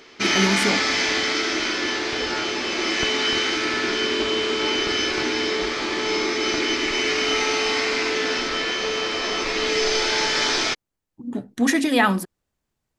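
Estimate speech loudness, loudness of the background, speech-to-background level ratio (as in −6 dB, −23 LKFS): −22.5 LKFS, −21.5 LKFS, −1.0 dB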